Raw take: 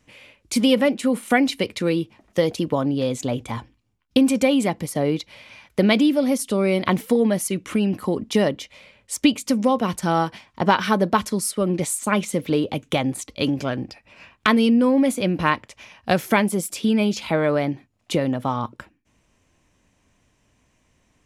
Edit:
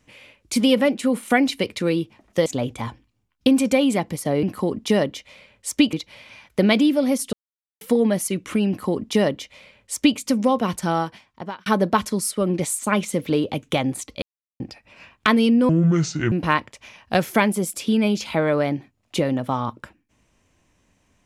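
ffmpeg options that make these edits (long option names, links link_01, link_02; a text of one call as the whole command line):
ffmpeg -i in.wav -filter_complex "[0:a]asplit=11[link_01][link_02][link_03][link_04][link_05][link_06][link_07][link_08][link_09][link_10][link_11];[link_01]atrim=end=2.462[link_12];[link_02]atrim=start=3.158:end=5.132[link_13];[link_03]atrim=start=7.878:end=9.382[link_14];[link_04]atrim=start=5.128:end=6.53,asetpts=PTS-STARTPTS,afade=type=out:start_time=1.398:duration=0.004:curve=hsin[link_15];[link_05]atrim=start=6.53:end=7.01,asetpts=PTS-STARTPTS,volume=0[link_16];[link_06]atrim=start=7.01:end=10.86,asetpts=PTS-STARTPTS,afade=type=in:duration=0.004:curve=hsin,afade=type=out:start_time=2.97:duration=0.88[link_17];[link_07]atrim=start=10.86:end=13.42,asetpts=PTS-STARTPTS,afade=type=in:duration=0.004:curve=hsin,afade=type=out:start_time=2.556:duration=0.004:curve=hsin[link_18];[link_08]atrim=start=13.42:end=13.8,asetpts=PTS-STARTPTS,volume=0[link_19];[link_09]atrim=start=13.8:end=14.894,asetpts=PTS-STARTPTS,afade=type=in:duration=0.004:curve=hsin[link_20];[link_10]atrim=start=14.89:end=15.28,asetpts=PTS-STARTPTS,asetrate=27342,aresample=44100,atrim=end_sample=27740,asetpts=PTS-STARTPTS[link_21];[link_11]atrim=start=15.276[link_22];[link_12][link_13]acrossfade=duration=0.004:curve1=hsin:curve2=hsin[link_23];[link_23][link_14]acrossfade=duration=0.004:curve1=hsin:curve2=hsin[link_24];[link_15][link_16][link_17][link_18][link_19][link_20]concat=n=6:v=0:a=1[link_25];[link_24][link_25]acrossfade=duration=0.004:curve1=hsin:curve2=hsin[link_26];[link_26][link_21]acrossfade=duration=0.004:curve1=hsin:curve2=hsin[link_27];[link_27][link_22]acrossfade=duration=0.004:curve1=hsin:curve2=hsin" out.wav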